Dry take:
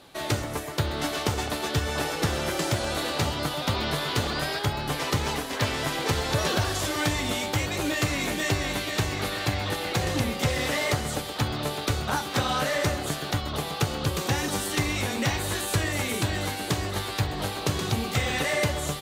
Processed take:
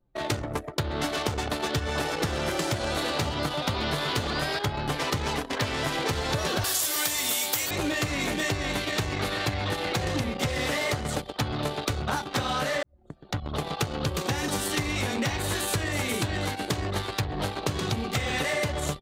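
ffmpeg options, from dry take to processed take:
ffmpeg -i in.wav -filter_complex "[0:a]asettb=1/sr,asplit=3[link_01][link_02][link_03];[link_01]atrim=end=6.644[link_04];[link_02]atrim=start=6.64:end=7.71,asetpts=PTS-STARTPTS,afade=type=in:duration=0.004:curve=qsin,afade=type=out:start_time=1.066:duration=0.004:curve=qsin,aemphasis=mode=production:type=riaa[link_05];[link_03]atrim=start=7.706[link_06];[link_04][link_05]acrossfade=duration=0.004:curve1=hsin:curve2=qsin[link_07];[link_07][link_06]acrossfade=duration=0.004:curve1=qsin:curve2=hsin,asplit=2[link_08][link_09];[link_08]atrim=end=12.83,asetpts=PTS-STARTPTS,afade=type=out:start_time=12.826:duration=0.004:curve=hsin[link_10];[link_09]atrim=start=12.83,asetpts=PTS-STARTPTS,afade=type=in:duration=0.85[link_11];[link_10][link_11]concat=n=2:v=0:a=1,anlmdn=25.1,acompressor=threshold=-27dB:ratio=6,volume=3dB" out.wav

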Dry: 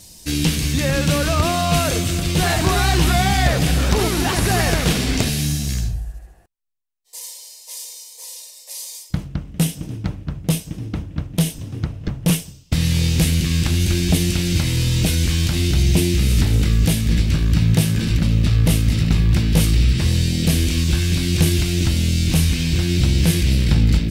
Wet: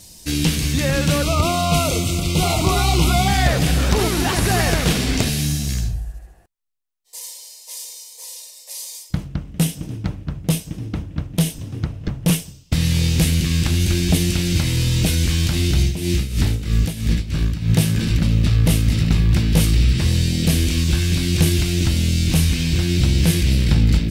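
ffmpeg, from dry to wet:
ffmpeg -i in.wav -filter_complex "[0:a]asettb=1/sr,asplit=3[link_01][link_02][link_03];[link_01]atrim=end=1.224[link_04];[link_02]atrim=start=1.22:end=3.28,asetpts=PTS-STARTPTS,afade=type=in:duration=0.004:curve=qsin,afade=type=out:start_time=2.056:duration=0.004:curve=qsin,asuperstop=centerf=1700:order=12:qfactor=3[link_05];[link_03]atrim=start=3.276[link_06];[link_04][link_05]acrossfade=duration=0.004:curve1=hsin:curve2=qsin[link_07];[link_07][link_06]acrossfade=duration=0.004:curve1=qsin:curve2=hsin,asettb=1/sr,asplit=3[link_08][link_09][link_10];[link_08]atrim=end=15.814[link_11];[link_09]atrim=start=15.81:end=17.7,asetpts=PTS-STARTPTS,afade=type=in:duration=0.004:curve=qsin,afade=type=out:start_time=1.886:duration=0.004:curve=qsin,tremolo=f=3.1:d=0.75[link_12];[link_10]atrim=start=17.696[link_13];[link_11][link_12]acrossfade=duration=0.004:curve1=hsin:curve2=qsin[link_14];[link_14][link_13]acrossfade=duration=0.004:curve1=qsin:curve2=hsin" out.wav

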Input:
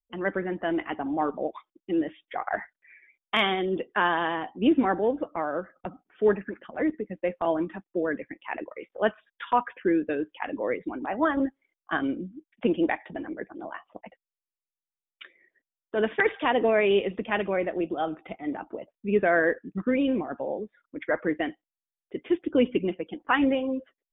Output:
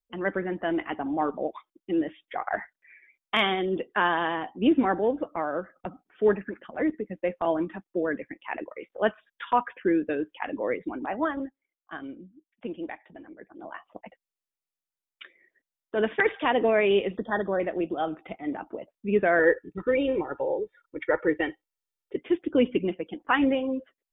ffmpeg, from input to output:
ffmpeg -i in.wav -filter_complex "[0:a]asettb=1/sr,asplit=3[link_01][link_02][link_03];[link_01]atrim=end=17.174[link_04];[link_02]atrim=start=17.17:end=17.6,asetpts=PTS-STARTPTS,afade=type=in:duration=0.004:curve=qsin,afade=type=out:start_time=0.426:duration=0.004:curve=qsin,asuperstop=centerf=2500:order=20:qfactor=1.8[link_05];[link_03]atrim=start=17.596[link_06];[link_04][link_05]acrossfade=duration=0.004:curve1=hsin:curve2=qsin[link_07];[link_07][link_06]acrossfade=duration=0.004:curve1=qsin:curve2=hsin,asettb=1/sr,asplit=3[link_08][link_09][link_10];[link_08]atrim=end=19.394[link_11];[link_09]atrim=start=19.39:end=22.16,asetpts=PTS-STARTPTS,afade=type=in:duration=0.004:curve=qsin,afade=type=out:start_time=2.766:duration=0.004:curve=qsin,aecho=1:1:2.2:0.87,atrim=end_sample=122157[link_12];[link_10]atrim=start=22.156[link_13];[link_11][link_12]acrossfade=duration=0.004:curve1=hsin:curve2=qsin[link_14];[link_14][link_13]acrossfade=duration=0.004:curve1=qsin:curve2=hsin,asplit=3[link_15][link_16][link_17];[link_15]atrim=end=11.5,asetpts=PTS-STARTPTS,afade=type=out:start_time=11.07:duration=0.43:silence=0.281838[link_18];[link_16]atrim=start=11.5:end=13.42,asetpts=PTS-STARTPTS,volume=-11dB[link_19];[link_17]atrim=start=13.42,asetpts=PTS-STARTPTS,afade=type=in:duration=0.43:silence=0.281838[link_20];[link_18][link_19][link_20]concat=n=3:v=0:a=1" out.wav

